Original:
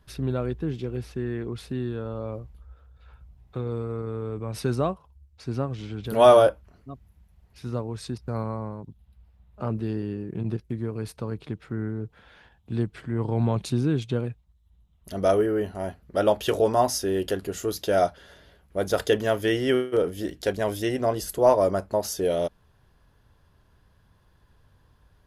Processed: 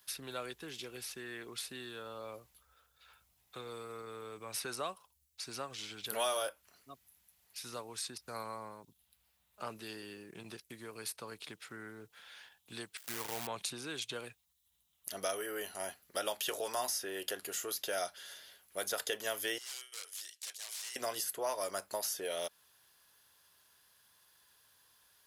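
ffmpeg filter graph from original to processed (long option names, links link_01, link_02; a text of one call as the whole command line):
ffmpeg -i in.wav -filter_complex "[0:a]asettb=1/sr,asplit=3[link_01][link_02][link_03];[link_01]atrim=end=12.974[link_04];[link_02]atrim=start=12.97:end=13.47,asetpts=PTS-STARTPTS,afade=type=in:duration=0.004:curve=qsin,afade=type=out:start_time=0.496:duration=0.004:curve=qsin,agate=range=-27dB:threshold=-33dB:ratio=16:release=100:detection=peak,acompressor=mode=upward:threshold=-43dB:ratio=2.5:attack=3.2:release=140:knee=2.83:detection=peak,acrusher=bits=7:dc=4:mix=0:aa=0.000001[link_05];[link_03]atrim=start=13.466[link_06];[link_04][link_05]acrossfade=duration=0.004:curve1=hsin:curve2=qsin[link_07];[link_07][link_06]acrossfade=duration=0.004:curve1=qsin:curve2=hsin,asettb=1/sr,asplit=3[link_08][link_09][link_10];[link_08]atrim=end=19.584[link_11];[link_09]atrim=start=19.58:end=20.96,asetpts=PTS-STARTPTS,afade=type=in:duration=0.004:curve=qsin,afade=type=out:start_time=1.376:duration=0.004:curve=qsin,aderivative,aeval=exprs='(mod(79.4*val(0)+1,2)-1)/79.4':channel_layout=same,highpass=430,lowpass=6700[link_12];[link_10]atrim=start=20.956[link_13];[link_11][link_12]acrossfade=duration=0.004:curve1=hsin:curve2=qsin[link_14];[link_14][link_13]acrossfade=duration=0.004:curve1=qsin:curve2=hsin,aderivative,acrossover=split=410|1200|2500[link_15][link_16][link_17][link_18];[link_15]acompressor=threshold=-60dB:ratio=4[link_19];[link_16]acompressor=threshold=-49dB:ratio=4[link_20];[link_17]acompressor=threshold=-55dB:ratio=4[link_21];[link_18]acompressor=threshold=-51dB:ratio=4[link_22];[link_19][link_20][link_21][link_22]amix=inputs=4:normalize=0,volume=11dB" out.wav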